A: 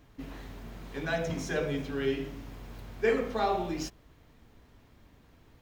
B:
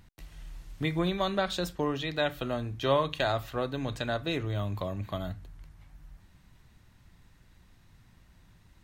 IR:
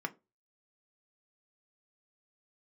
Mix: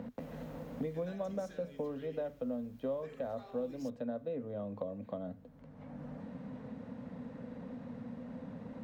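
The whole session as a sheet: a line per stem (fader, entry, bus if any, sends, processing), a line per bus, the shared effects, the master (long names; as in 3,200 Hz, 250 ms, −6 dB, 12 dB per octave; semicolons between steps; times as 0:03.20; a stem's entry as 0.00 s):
0:00.72 −14 dB → 0:01.16 −21.5 dB, 0.00 s, no send, high-shelf EQ 6,500 Hz +10.5 dB; brickwall limiter −23.5 dBFS, peak gain reduction 9 dB
+1.5 dB, 0.00 s, no send, pair of resonant band-passes 350 Hz, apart 1 octave; multiband upward and downward compressor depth 100%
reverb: not used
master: no processing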